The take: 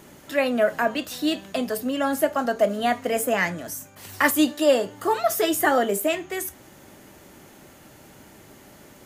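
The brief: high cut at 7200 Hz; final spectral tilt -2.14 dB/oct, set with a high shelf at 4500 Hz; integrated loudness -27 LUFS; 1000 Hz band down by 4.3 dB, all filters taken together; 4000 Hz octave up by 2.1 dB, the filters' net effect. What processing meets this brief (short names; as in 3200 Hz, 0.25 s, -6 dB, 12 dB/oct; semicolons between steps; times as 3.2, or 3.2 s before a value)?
LPF 7200 Hz; bell 1000 Hz -6.5 dB; bell 4000 Hz +7 dB; high shelf 4500 Hz -6.5 dB; gain -2 dB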